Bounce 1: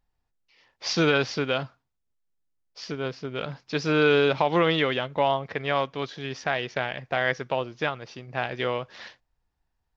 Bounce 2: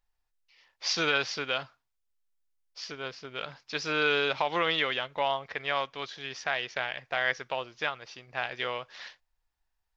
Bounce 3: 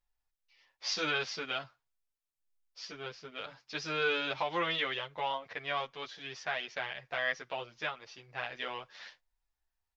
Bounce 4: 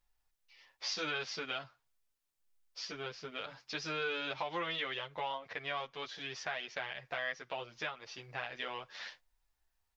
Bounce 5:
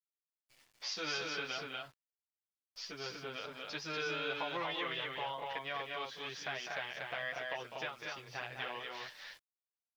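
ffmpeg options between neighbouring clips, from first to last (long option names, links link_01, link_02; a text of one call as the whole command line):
ffmpeg -i in.wav -af "equalizer=frequency=170:width=0.33:gain=-14.5" out.wav
ffmpeg -i in.wav -filter_complex "[0:a]asplit=2[link_01][link_02];[link_02]adelay=9,afreqshift=1.5[link_03];[link_01][link_03]amix=inputs=2:normalize=1,volume=-2dB" out.wav
ffmpeg -i in.wav -af "acompressor=threshold=-47dB:ratio=2,volume=5dB" out.wav
ffmpeg -i in.wav -af "aecho=1:1:201.2|239.1:0.398|0.708,aeval=exprs='val(0)*gte(abs(val(0)),0.00126)':channel_layout=same,volume=-2.5dB" out.wav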